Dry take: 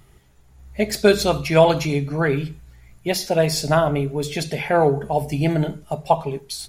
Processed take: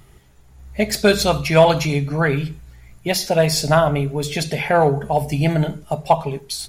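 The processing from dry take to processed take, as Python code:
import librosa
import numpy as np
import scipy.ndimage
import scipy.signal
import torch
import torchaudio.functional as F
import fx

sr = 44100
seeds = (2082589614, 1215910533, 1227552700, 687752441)

p1 = fx.dynamic_eq(x, sr, hz=350.0, q=1.7, threshold_db=-31.0, ratio=4.0, max_db=-6)
p2 = np.clip(10.0 ** (11.5 / 20.0) * p1, -1.0, 1.0) / 10.0 ** (11.5 / 20.0)
y = p1 + (p2 * librosa.db_to_amplitude(-6.0))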